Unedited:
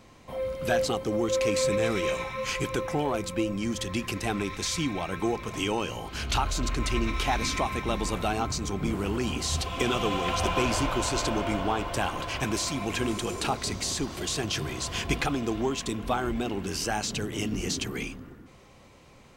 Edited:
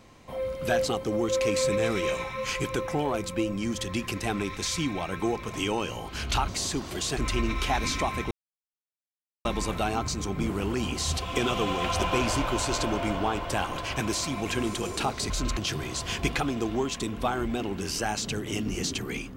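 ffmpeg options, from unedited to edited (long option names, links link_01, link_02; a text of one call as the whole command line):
ffmpeg -i in.wav -filter_complex "[0:a]asplit=6[link_01][link_02][link_03][link_04][link_05][link_06];[link_01]atrim=end=6.482[link_07];[link_02]atrim=start=13.738:end=14.432[link_08];[link_03]atrim=start=6.748:end=7.89,asetpts=PTS-STARTPTS,afade=type=out:start_time=1.138:duration=0.004:curve=hsin,apad=pad_dur=1.14[link_09];[link_04]atrim=start=7.89:end=13.742,asetpts=PTS-STARTPTS,afade=type=in:duration=0.004:curve=hsin[link_10];[link_05]atrim=start=6.478:end=6.752[link_11];[link_06]atrim=start=14.428[link_12];[link_07][link_08]acrossfade=duration=0.004:curve1=hsin:curve2=hsin[link_13];[link_09][link_10]concat=n=2:v=0:a=1[link_14];[link_13][link_14]acrossfade=duration=0.004:curve1=hsin:curve2=hsin[link_15];[link_15][link_11]acrossfade=duration=0.004:curve1=hsin:curve2=hsin[link_16];[link_16][link_12]acrossfade=duration=0.004:curve1=hsin:curve2=hsin" out.wav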